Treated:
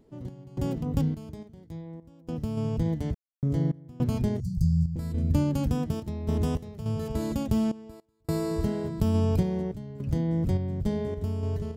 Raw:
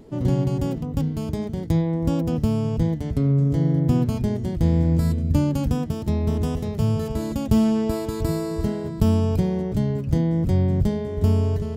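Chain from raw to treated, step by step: 4.4–4.96 Chebyshev band-stop 190–4600 Hz, order 5; compressor 1.5:1, threshold -24 dBFS, peak gain reduction 4.5 dB; random-step tremolo, depth 100%

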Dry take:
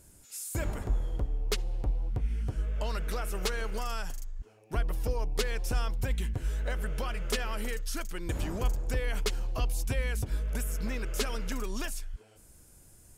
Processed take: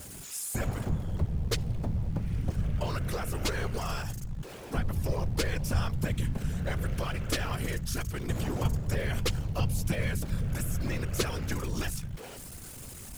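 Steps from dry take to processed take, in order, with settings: zero-crossing step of -39.5 dBFS; whisperiser

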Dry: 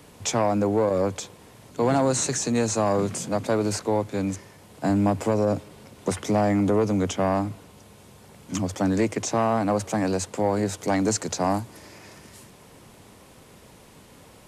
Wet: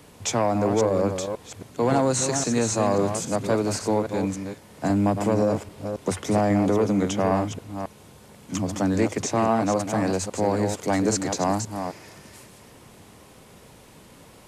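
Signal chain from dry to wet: reverse delay 0.271 s, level -7 dB

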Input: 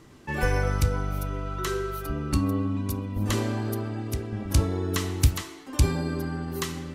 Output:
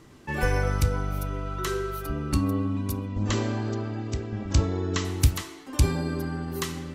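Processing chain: 3.07–5.05 brick-wall FIR low-pass 7900 Hz

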